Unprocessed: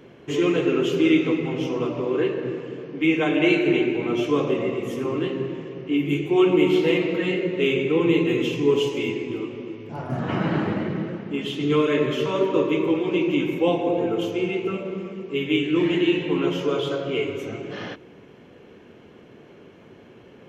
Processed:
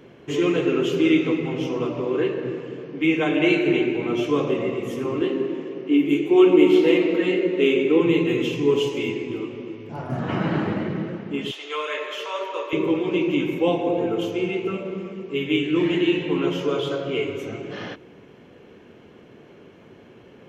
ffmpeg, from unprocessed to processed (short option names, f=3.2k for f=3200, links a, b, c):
-filter_complex "[0:a]asettb=1/sr,asplit=3[a][b][c];[a]atrim=end=5.214[d];[b]atrim=start=5.21:end=8.01,asetpts=PTS-STARTPTS,afade=t=in:d=0.004:c=qsin,afade=t=out:st=2.796:d=0.004:c=qsin,highpass=f=270:t=q:w=1.6[e];[c]atrim=start=8.006[f];[d][e]acrossfade=d=0.004:c1=hsin:c2=qsin[g];[g][f]acrossfade=d=0.004:c1=qsin:c2=hsin,asettb=1/sr,asplit=3[h][i][j];[h]atrim=end=11.514[k];[i]atrim=start=11.51:end=12.73,asetpts=PTS-STARTPTS,afade=t=in:d=0.004:c=qsin,afade=t=out:st=1.216:d=0.004:c=qsin,highpass=f=600:w=0.5412,highpass=f=600:w=1.3066[l];[j]atrim=start=12.726[m];[k][l]acrossfade=d=0.004:c1=hsin:c2=qsin[n];[n][m]acrossfade=d=0.004:c1=qsin:c2=hsin"